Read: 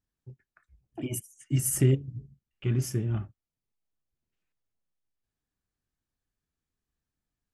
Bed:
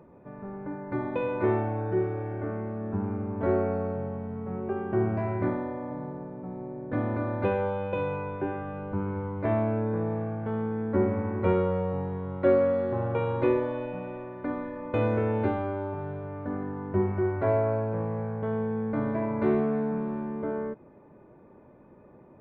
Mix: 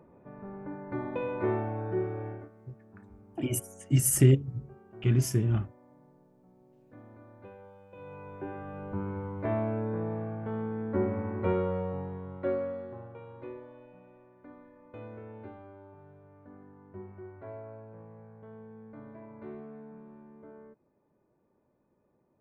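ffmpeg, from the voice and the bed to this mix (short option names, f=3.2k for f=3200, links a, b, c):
-filter_complex "[0:a]adelay=2400,volume=2.5dB[a];[1:a]volume=15dB,afade=t=out:st=2.28:d=0.21:silence=0.112202,afade=t=in:st=7.91:d=0.94:silence=0.112202,afade=t=out:st=11.77:d=1.38:silence=0.177828[b];[a][b]amix=inputs=2:normalize=0"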